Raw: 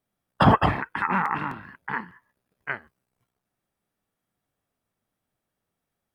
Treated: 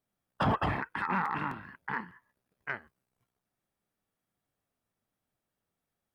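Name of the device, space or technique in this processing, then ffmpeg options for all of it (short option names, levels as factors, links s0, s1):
soft clipper into limiter: -af "asoftclip=type=tanh:threshold=0.299,alimiter=limit=0.141:level=0:latency=1:release=43,volume=0.631"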